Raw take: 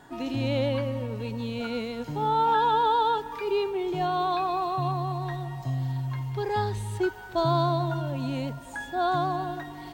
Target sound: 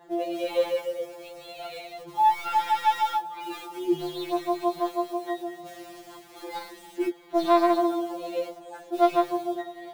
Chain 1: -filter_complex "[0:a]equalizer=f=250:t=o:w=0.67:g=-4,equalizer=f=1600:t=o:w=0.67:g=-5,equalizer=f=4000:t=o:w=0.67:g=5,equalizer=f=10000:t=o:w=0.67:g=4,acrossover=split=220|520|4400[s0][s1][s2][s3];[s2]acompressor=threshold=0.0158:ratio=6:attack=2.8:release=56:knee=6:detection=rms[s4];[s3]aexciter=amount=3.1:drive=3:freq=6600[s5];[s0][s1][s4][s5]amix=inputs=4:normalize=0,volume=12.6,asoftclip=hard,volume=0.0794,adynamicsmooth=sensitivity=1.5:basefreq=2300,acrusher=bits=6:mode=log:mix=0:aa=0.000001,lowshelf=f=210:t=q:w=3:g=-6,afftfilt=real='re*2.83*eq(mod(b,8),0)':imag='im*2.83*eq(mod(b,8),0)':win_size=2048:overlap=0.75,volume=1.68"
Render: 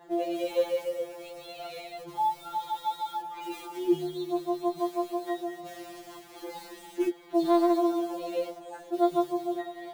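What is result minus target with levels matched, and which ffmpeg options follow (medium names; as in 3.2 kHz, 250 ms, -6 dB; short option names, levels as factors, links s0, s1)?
compression: peak gain reduction +14 dB
-filter_complex "[0:a]equalizer=f=250:t=o:w=0.67:g=-4,equalizer=f=1600:t=o:w=0.67:g=-5,equalizer=f=4000:t=o:w=0.67:g=5,equalizer=f=10000:t=o:w=0.67:g=4,acrossover=split=220|520|4400[s0][s1][s2][s3];[s3]aexciter=amount=3.1:drive=3:freq=6600[s4];[s0][s1][s2][s4]amix=inputs=4:normalize=0,volume=12.6,asoftclip=hard,volume=0.0794,adynamicsmooth=sensitivity=1.5:basefreq=2300,acrusher=bits=6:mode=log:mix=0:aa=0.000001,lowshelf=f=210:t=q:w=3:g=-6,afftfilt=real='re*2.83*eq(mod(b,8),0)':imag='im*2.83*eq(mod(b,8),0)':win_size=2048:overlap=0.75,volume=1.68"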